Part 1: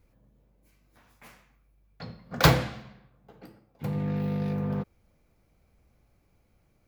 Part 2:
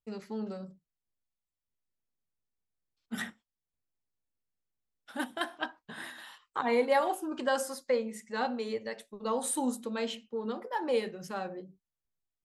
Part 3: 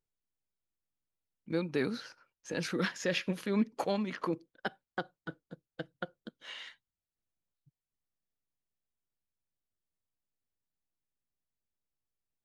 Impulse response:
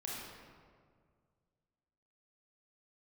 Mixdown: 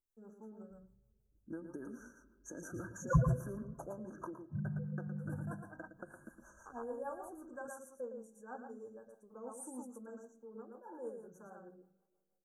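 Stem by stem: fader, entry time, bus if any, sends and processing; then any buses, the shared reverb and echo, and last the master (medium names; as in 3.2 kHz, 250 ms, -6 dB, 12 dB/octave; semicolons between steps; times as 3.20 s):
-1.5 dB, 0.70 s, send -12 dB, echo send -3 dB, reverb removal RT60 1.5 s; peaking EQ 180 Hz -5.5 dB 1 oct; loudest bins only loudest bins 4
-15.0 dB, 0.10 s, send -18 dB, echo send -3 dB, none
-6.0 dB, 0.00 s, send -14 dB, echo send -7.5 dB, treble shelf 10 kHz +11.5 dB; comb 3.2 ms, depth 52%; compression 6:1, threshold -36 dBFS, peak gain reduction 12 dB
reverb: on, RT60 1.9 s, pre-delay 25 ms
echo: delay 113 ms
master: rotary cabinet horn 6.3 Hz; brick-wall FIR band-stop 1.7–5.7 kHz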